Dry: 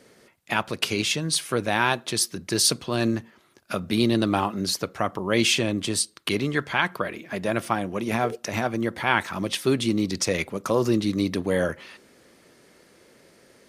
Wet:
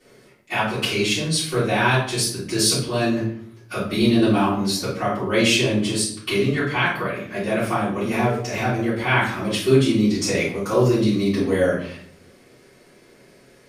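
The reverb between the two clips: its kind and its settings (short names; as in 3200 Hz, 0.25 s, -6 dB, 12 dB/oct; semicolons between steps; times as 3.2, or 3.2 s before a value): shoebox room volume 85 m³, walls mixed, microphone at 3.5 m; gain -10 dB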